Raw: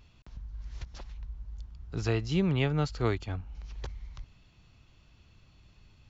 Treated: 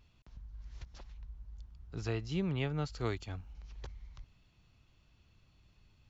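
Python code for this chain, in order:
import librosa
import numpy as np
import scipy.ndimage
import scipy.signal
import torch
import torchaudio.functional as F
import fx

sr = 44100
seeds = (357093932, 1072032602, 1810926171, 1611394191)

y = fx.high_shelf(x, sr, hz=fx.line((2.89, 6000.0), (3.52, 4000.0)), db=11.0, at=(2.89, 3.52), fade=0.02)
y = y * 10.0 ** (-7.0 / 20.0)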